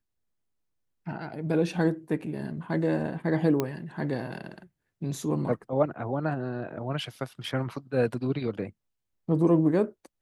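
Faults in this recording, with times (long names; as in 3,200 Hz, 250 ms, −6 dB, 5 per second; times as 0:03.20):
0:03.60: click −13 dBFS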